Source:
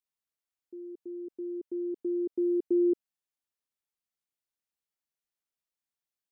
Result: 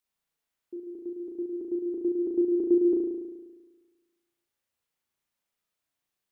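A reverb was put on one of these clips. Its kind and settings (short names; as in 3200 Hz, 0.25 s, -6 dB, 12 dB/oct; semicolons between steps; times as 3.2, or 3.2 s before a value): spring tank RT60 1.3 s, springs 35 ms, chirp 30 ms, DRR -1 dB; gain +5.5 dB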